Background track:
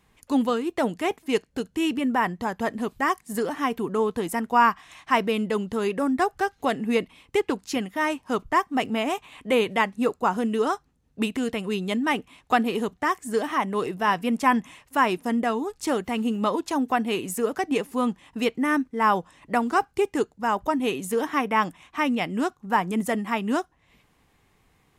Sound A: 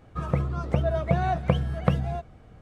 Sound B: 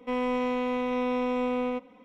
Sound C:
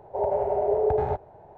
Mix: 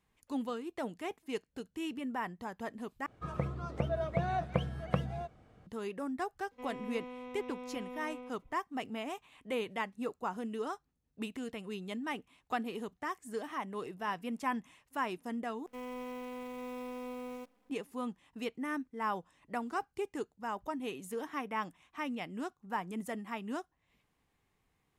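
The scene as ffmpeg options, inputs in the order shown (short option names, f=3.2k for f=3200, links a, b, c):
-filter_complex "[2:a]asplit=2[a][b];[0:a]volume=-14dB[c];[1:a]lowshelf=f=83:g=-11[d];[b]acrusher=bits=8:dc=4:mix=0:aa=0.000001[e];[c]asplit=3[f][g][h];[f]atrim=end=3.064[i];[d]atrim=end=2.61,asetpts=PTS-STARTPTS,volume=-7dB[j];[g]atrim=start=5.666:end=15.664[k];[e]atrim=end=2.04,asetpts=PTS-STARTPTS,volume=-14.5dB[l];[h]atrim=start=17.696[m];[a]atrim=end=2.04,asetpts=PTS-STARTPTS,volume=-17dB,afade=t=in:d=0.004:c=hsin,afade=t=out:st=2.036:d=0.004:c=hsin,adelay=6510[n];[i][j]acrossfade=d=0.004:c1=hsin:c2=hsin[o];[o][k]acrossfade=d=0.004:c1=hsin:c2=hsin[p];[p][l]acrossfade=d=0.004:c1=hsin:c2=hsin[q];[q][m]acrossfade=d=0.004:c1=hsin:c2=hsin[r];[r][n]amix=inputs=2:normalize=0"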